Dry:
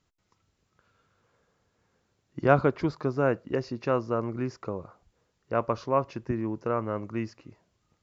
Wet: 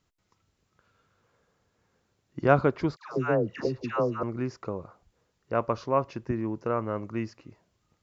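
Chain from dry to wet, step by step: 2.96–4.23 dispersion lows, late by 0.136 s, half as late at 830 Hz

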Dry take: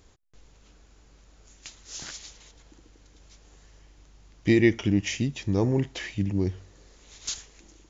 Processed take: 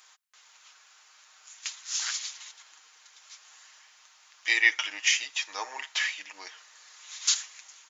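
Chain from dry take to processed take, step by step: HPF 1000 Hz 24 dB/oct; comb 6.5 ms, depth 47%; gain +7.5 dB

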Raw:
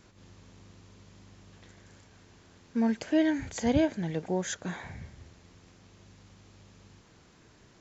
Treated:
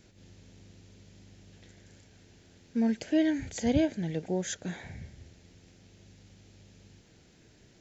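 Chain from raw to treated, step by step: bell 1100 Hz -13.5 dB 0.66 oct

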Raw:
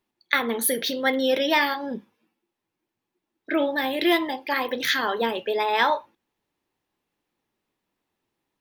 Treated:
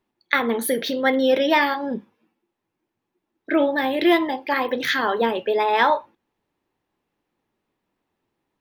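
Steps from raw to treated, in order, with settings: high shelf 2900 Hz -9.5 dB; gain +4.5 dB

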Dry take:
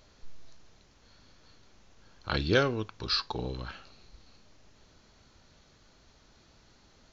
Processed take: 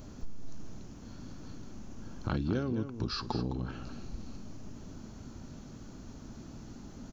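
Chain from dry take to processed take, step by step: graphic EQ 125/250/500/1000/2000/4000 Hz +3/+9/-5/-3/-9/-12 dB; compressor 5:1, threshold -44 dBFS, peak gain reduction 22 dB; on a send: echo 0.21 s -10 dB; on the sum: gain +12.5 dB

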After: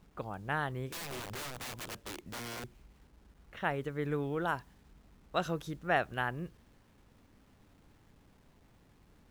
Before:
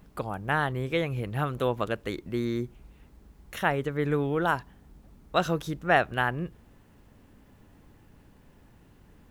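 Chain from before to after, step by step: low-pass opened by the level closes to 1400 Hz, open at -26 dBFS; 0.88–2.64 wrapped overs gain 29 dB; bit-crush 10-bit; gain -7.5 dB

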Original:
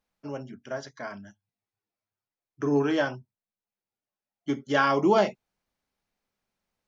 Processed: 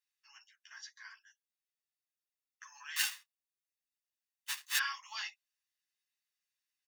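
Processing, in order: 2.96–4.78 half-waves squared off; Bessel high-pass 2300 Hz, order 8; comb 1.1 ms, depth 53%; ensemble effect

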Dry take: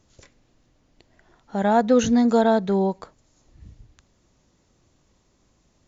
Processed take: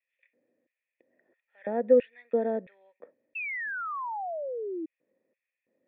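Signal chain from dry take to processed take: LFO high-pass square 1.5 Hz 250–2500 Hz; vocal tract filter e; painted sound fall, 3.35–4.86, 310–2700 Hz -34 dBFS

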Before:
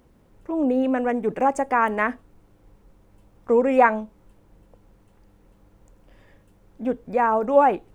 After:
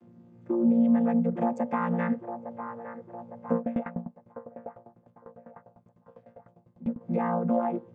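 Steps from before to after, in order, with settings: chord vocoder bare fifth, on A#2; compressor 6:1, threshold -26 dBFS, peak gain reduction 14.5 dB; bell 240 Hz +9.5 dB 0.32 oct; band-limited delay 0.858 s, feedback 56%, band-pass 790 Hz, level -8 dB; 3.56–7.01 dB-ramp tremolo decaying 10 Hz, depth 21 dB

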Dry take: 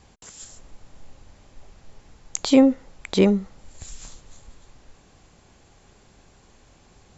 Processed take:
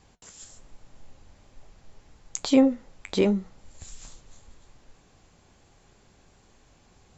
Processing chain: flange 1.2 Hz, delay 5.9 ms, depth 7.2 ms, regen -66%

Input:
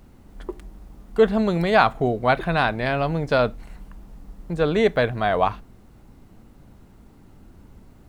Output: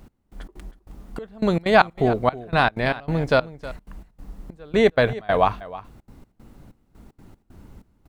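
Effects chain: step gate "x...xx.xx..xxx" 190 bpm -24 dB; on a send: echo 0.317 s -17 dB; on the sum: gain +2 dB

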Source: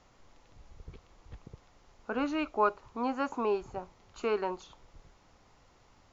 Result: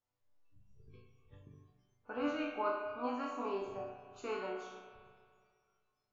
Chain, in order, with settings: resonator bank G2 major, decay 0.72 s; spectral noise reduction 22 dB; spring tank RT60 2 s, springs 32/42 ms, chirp 70 ms, DRR 5 dB; gain +11 dB

